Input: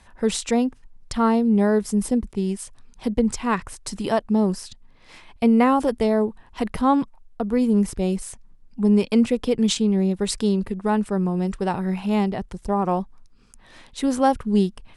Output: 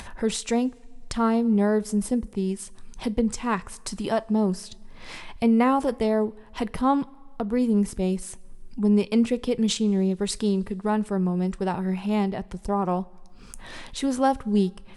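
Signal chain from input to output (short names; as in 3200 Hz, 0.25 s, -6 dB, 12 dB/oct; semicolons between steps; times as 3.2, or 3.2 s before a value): upward compressor, threshold -25 dBFS; two-slope reverb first 0.21 s, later 1.7 s, from -18 dB, DRR 15.5 dB; gain -3 dB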